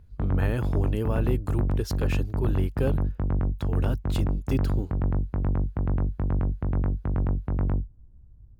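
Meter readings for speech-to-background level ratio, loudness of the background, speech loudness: -4.0 dB, -28.0 LUFS, -32.0 LUFS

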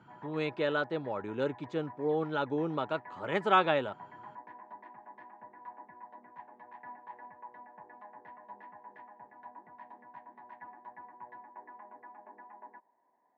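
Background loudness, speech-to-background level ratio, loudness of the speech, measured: -51.0 LUFS, 19.0 dB, -32.0 LUFS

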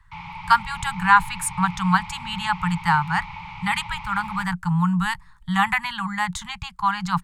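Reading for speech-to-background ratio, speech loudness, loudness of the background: 13.5 dB, -23.0 LUFS, -36.5 LUFS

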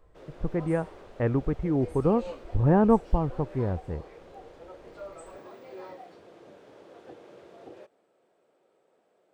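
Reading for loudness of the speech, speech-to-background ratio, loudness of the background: -27.0 LUFS, 19.5 dB, -46.5 LUFS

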